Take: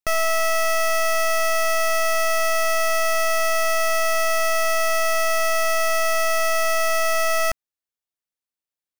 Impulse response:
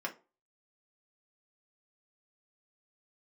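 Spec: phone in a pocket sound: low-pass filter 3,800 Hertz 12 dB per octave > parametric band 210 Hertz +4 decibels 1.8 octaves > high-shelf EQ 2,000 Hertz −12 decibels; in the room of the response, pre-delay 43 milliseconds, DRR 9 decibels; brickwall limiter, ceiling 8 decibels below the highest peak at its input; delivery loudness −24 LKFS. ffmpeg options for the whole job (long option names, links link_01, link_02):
-filter_complex "[0:a]alimiter=level_in=3.5dB:limit=-24dB:level=0:latency=1,volume=-3.5dB,asplit=2[link_01][link_02];[1:a]atrim=start_sample=2205,adelay=43[link_03];[link_02][link_03]afir=irnorm=-1:irlink=0,volume=-12dB[link_04];[link_01][link_04]amix=inputs=2:normalize=0,lowpass=3800,equalizer=frequency=210:width_type=o:width=1.8:gain=4,highshelf=frequency=2000:gain=-12,volume=7dB"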